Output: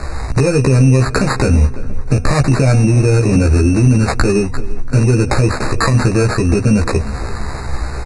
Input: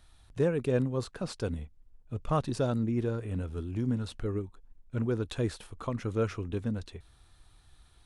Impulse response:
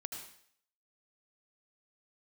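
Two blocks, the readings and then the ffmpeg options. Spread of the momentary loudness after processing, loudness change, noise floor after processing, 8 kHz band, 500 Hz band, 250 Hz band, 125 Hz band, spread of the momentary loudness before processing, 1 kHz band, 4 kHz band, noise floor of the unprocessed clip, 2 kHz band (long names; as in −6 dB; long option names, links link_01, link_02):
12 LU, +19.0 dB, −23 dBFS, +25.0 dB, +15.5 dB, +18.0 dB, +22.0 dB, 12 LU, +19.0 dB, +19.5 dB, −61 dBFS, +24.0 dB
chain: -filter_complex "[0:a]asplit=2[link_01][link_02];[link_02]aeval=exprs='0.0335*(abs(mod(val(0)/0.0335+3,4)-2)-1)':channel_layout=same,volume=-11dB[link_03];[link_01][link_03]amix=inputs=2:normalize=0,acrossover=split=130|5000[link_04][link_05][link_06];[link_04]acompressor=threshold=-38dB:ratio=4[link_07];[link_05]acompressor=threshold=-39dB:ratio=4[link_08];[link_06]acompressor=threshold=-54dB:ratio=4[link_09];[link_07][link_08][link_09]amix=inputs=3:normalize=0,bandreject=frequency=243.7:width_type=h:width=4,bandreject=frequency=487.4:width_type=h:width=4,bandreject=frequency=731.1:width_type=h:width=4,acompressor=threshold=-44dB:ratio=3,acrusher=samples=15:mix=1:aa=0.000001,asplit=2[link_10][link_11];[link_11]adelay=15,volume=-2dB[link_12];[link_10][link_12]amix=inputs=2:normalize=0,asplit=2[link_13][link_14];[link_14]adelay=342,lowpass=frequency=2400:poles=1,volume=-18dB,asplit=2[link_15][link_16];[link_16]adelay=342,lowpass=frequency=2400:poles=1,volume=0.54,asplit=2[link_17][link_18];[link_18]adelay=342,lowpass=frequency=2400:poles=1,volume=0.54,asplit=2[link_19][link_20];[link_20]adelay=342,lowpass=frequency=2400:poles=1,volume=0.54,asplit=2[link_21][link_22];[link_22]adelay=342,lowpass=frequency=2400:poles=1,volume=0.54[link_23];[link_13][link_15][link_17][link_19][link_21][link_23]amix=inputs=6:normalize=0,aresample=22050,aresample=44100,asuperstop=centerf=3200:order=20:qfactor=3.3,alimiter=level_in=35.5dB:limit=-1dB:release=50:level=0:latency=1,volume=-2dB"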